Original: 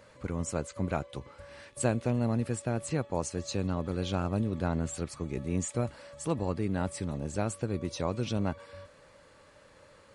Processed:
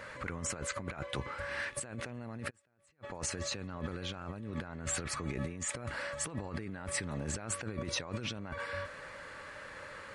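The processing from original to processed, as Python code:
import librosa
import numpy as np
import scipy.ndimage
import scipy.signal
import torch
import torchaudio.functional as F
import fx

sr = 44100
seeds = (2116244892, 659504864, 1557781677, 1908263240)

y = fx.peak_eq(x, sr, hz=1700.0, db=11.5, octaves=1.4)
y = fx.over_compress(y, sr, threshold_db=-38.0, ratio=-1.0)
y = fx.gate_flip(y, sr, shuts_db=-29.0, range_db=-33, at=(2.49, 3.03), fade=0.02)
y = y * 10.0 ** (-1.5 / 20.0)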